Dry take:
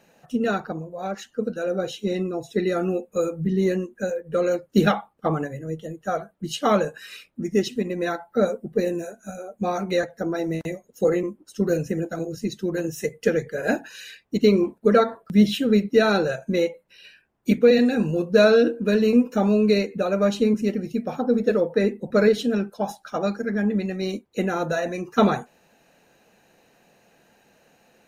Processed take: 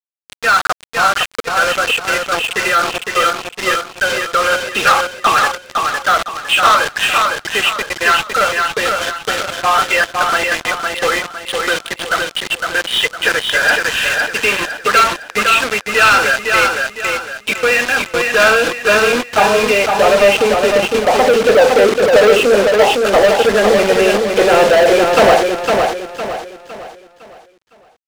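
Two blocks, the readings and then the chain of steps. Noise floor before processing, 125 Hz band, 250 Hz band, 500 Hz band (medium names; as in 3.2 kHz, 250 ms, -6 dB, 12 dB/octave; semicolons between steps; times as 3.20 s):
-63 dBFS, -3.0 dB, -2.5 dB, +8.5 dB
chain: knee-point frequency compression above 2.4 kHz 4:1; high-pass 120 Hz 24 dB/octave; bass shelf 170 Hz +5.5 dB; in parallel at +2 dB: compression 6:1, threshold -26 dBFS, peak gain reduction 16 dB; on the sum: high-pass sweep 1.2 kHz -> 550 Hz, 17.89–21.69 s; bit crusher 5-bit; distance through air 80 m; waveshaping leveller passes 5; on a send: feedback delay 508 ms, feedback 38%, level -4 dB; on the sum: trim -5.5 dB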